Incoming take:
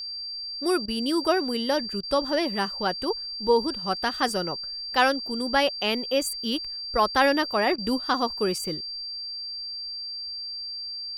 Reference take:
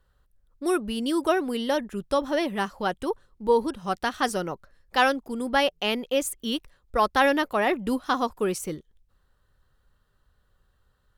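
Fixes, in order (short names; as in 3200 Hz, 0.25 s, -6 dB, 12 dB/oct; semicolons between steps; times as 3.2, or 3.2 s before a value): notch 4700 Hz, Q 30; interpolate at 0.86/2.01/7.76, 20 ms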